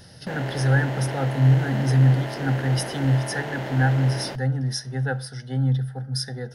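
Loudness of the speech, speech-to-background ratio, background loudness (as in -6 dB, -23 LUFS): -23.5 LUFS, 9.5 dB, -33.0 LUFS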